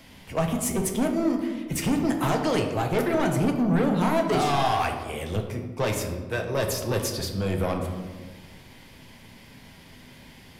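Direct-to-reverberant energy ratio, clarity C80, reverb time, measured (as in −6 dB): 2.5 dB, 8.0 dB, 1.4 s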